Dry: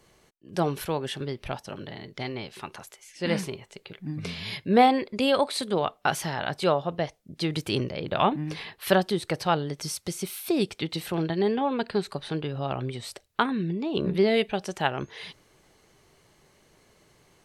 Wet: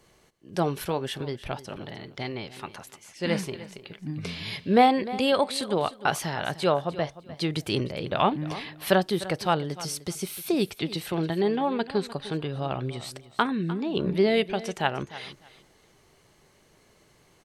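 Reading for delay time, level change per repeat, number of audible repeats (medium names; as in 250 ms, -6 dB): 302 ms, -14.0 dB, 2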